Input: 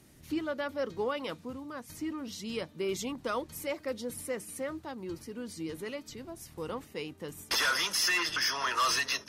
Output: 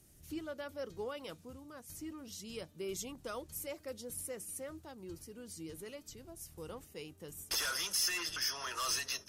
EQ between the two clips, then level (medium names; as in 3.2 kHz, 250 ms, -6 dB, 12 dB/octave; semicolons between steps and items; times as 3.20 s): graphic EQ 125/250/500/1000/2000/4000 Hz -5/-10/-5/-10/-9/-7 dB; +1.0 dB